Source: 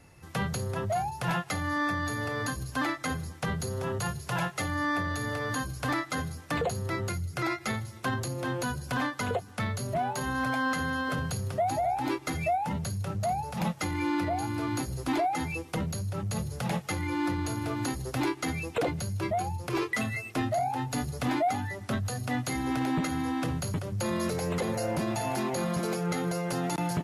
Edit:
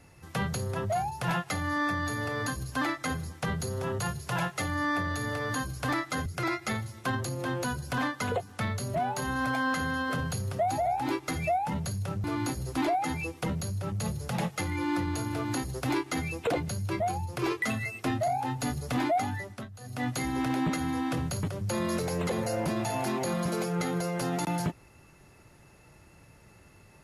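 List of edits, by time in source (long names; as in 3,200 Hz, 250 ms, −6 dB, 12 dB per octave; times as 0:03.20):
0:06.26–0:07.25: remove
0:13.23–0:14.55: remove
0:21.69–0:22.39: duck −15 dB, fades 0.29 s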